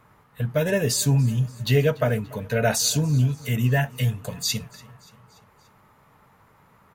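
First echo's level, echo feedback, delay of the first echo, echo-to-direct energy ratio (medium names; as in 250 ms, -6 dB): -23.0 dB, 58%, 289 ms, -21.5 dB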